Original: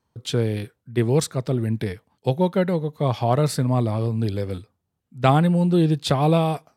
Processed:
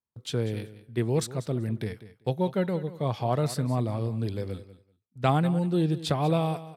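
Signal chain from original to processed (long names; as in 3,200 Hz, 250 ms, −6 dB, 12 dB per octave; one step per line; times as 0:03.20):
noise gate −42 dBFS, range −18 dB
repeating echo 192 ms, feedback 16%, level −15.5 dB
level −6.5 dB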